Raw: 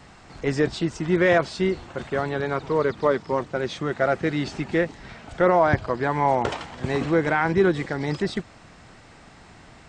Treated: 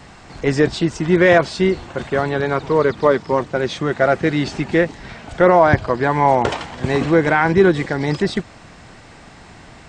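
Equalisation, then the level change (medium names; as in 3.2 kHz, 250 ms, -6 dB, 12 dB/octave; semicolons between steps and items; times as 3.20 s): band-stop 1.3 kHz, Q 25; +6.5 dB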